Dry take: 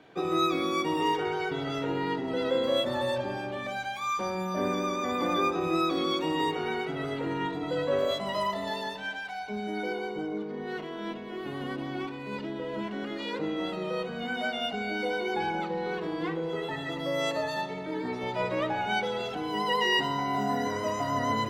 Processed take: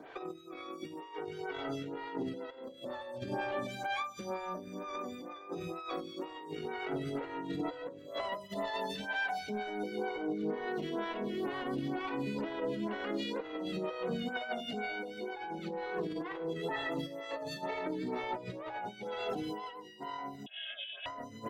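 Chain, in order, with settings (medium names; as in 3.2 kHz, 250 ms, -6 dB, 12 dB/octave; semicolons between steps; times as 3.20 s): 5.57–6.01 s: peaking EQ 300 Hz -9.5 dB 0.61 oct; compressor with a negative ratio -35 dBFS, ratio -0.5; peak limiter -26.5 dBFS, peak gain reduction 7 dB; delay 371 ms -19.5 dB; 20.46–21.06 s: frequency inversion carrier 3.6 kHz; lamp-driven phase shifter 2.1 Hz; trim +1.5 dB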